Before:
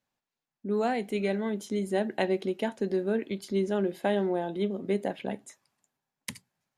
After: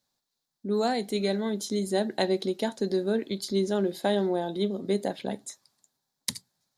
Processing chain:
high shelf with overshoot 3,300 Hz +6 dB, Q 3
level +1.5 dB

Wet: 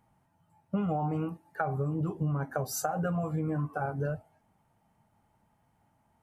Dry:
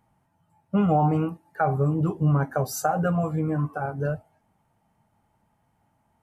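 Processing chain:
downward compressor 6 to 1, threshold −26 dBFS, peak gain reduction 9.5 dB
level −1.5 dB

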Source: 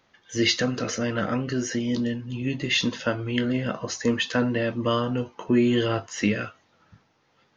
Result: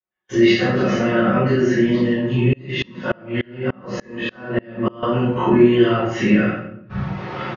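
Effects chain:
every bin's largest magnitude spread in time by 60 ms
camcorder AGC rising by 38 dB per second
high-pass filter 48 Hz
noise gate −34 dBFS, range −38 dB
low-pass filter 2,200 Hz 12 dB per octave
comb filter 5.4 ms, depth 59%
rectangular room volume 140 cubic metres, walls mixed, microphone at 3.2 metres
0:02.53–0:05.03: tremolo with a ramp in dB swelling 3.4 Hz, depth 31 dB
level −8.5 dB

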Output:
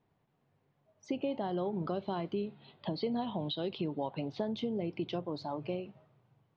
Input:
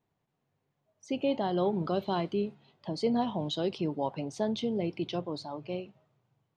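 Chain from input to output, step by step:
0:02.36–0:04.40: high shelf with overshoot 5,300 Hz −11 dB, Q 3
downward compressor 4 to 1, threshold −38 dBFS, peak gain reduction 12.5 dB
high-frequency loss of the air 170 metres
level +5.5 dB

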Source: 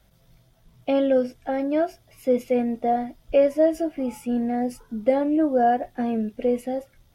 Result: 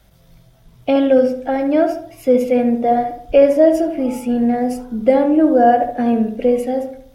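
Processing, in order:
feedback echo with a low-pass in the loop 72 ms, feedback 47%, low-pass 1,600 Hz, level −6 dB
level +7 dB

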